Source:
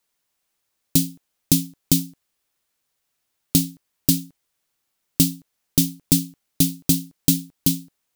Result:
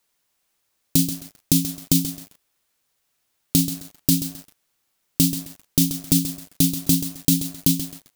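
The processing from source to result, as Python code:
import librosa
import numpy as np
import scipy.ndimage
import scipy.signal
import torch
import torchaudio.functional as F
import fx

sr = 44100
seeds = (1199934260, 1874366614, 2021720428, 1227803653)

p1 = fx.over_compress(x, sr, threshold_db=-18.0, ratio=-0.5)
p2 = x + (p1 * 10.0 ** (-1.0 / 20.0))
p3 = fx.echo_crushed(p2, sr, ms=132, feedback_pct=35, bits=5, wet_db=-9.5)
y = p3 * 10.0 ** (-3.5 / 20.0)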